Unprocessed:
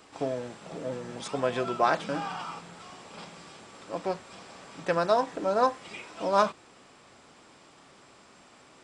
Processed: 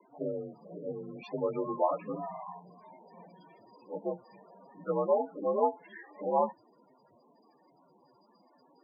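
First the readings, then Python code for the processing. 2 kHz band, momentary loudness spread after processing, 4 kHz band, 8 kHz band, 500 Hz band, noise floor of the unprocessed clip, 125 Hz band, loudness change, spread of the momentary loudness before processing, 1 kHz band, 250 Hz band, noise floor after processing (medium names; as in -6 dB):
-18.0 dB, 15 LU, under -20 dB, under -30 dB, -2.5 dB, -56 dBFS, -5.5 dB, -4.0 dB, 21 LU, -5.5 dB, -3.0 dB, -65 dBFS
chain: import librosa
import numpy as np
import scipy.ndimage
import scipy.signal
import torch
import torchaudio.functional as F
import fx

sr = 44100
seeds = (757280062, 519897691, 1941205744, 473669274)

y = fx.partial_stretch(x, sr, pct=87)
y = fx.spec_topn(y, sr, count=16)
y = y * librosa.db_to_amplitude(-2.0)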